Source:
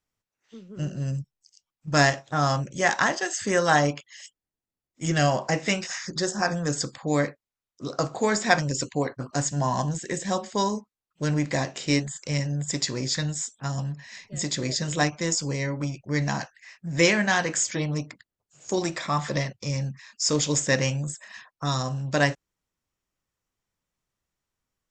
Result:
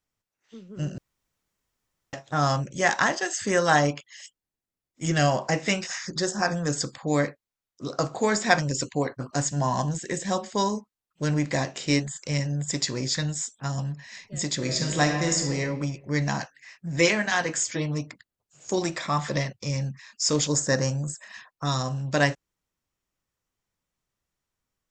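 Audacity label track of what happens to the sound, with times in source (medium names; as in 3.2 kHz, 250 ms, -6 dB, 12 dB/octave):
0.980000	2.130000	room tone
14.560000	15.590000	reverb throw, RT60 1.1 s, DRR 2 dB
16.960000	18.070000	comb of notches 190 Hz
20.470000	21.180000	high-order bell 2.7 kHz -12 dB 1 oct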